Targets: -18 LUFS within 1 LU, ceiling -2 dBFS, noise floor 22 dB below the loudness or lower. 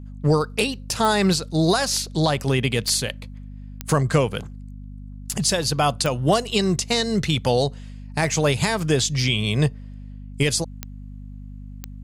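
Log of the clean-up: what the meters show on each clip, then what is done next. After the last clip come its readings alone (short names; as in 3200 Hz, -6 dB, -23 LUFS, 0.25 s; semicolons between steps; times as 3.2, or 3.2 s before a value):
clicks 6; hum 50 Hz; harmonics up to 250 Hz; hum level -35 dBFS; loudness -21.5 LUFS; peak -8.0 dBFS; loudness target -18.0 LUFS
-> de-click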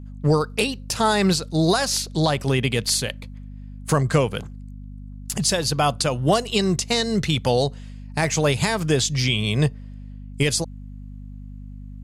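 clicks 0; hum 50 Hz; harmonics up to 250 Hz; hum level -35 dBFS
-> de-hum 50 Hz, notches 5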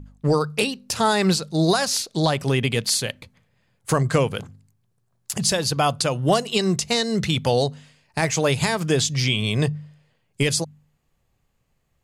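hum none; loudness -22.0 LUFS; peak -7.5 dBFS; loudness target -18.0 LUFS
-> gain +4 dB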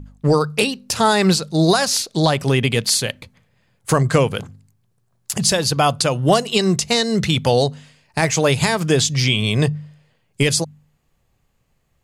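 loudness -18.0 LUFS; peak -3.5 dBFS; noise floor -66 dBFS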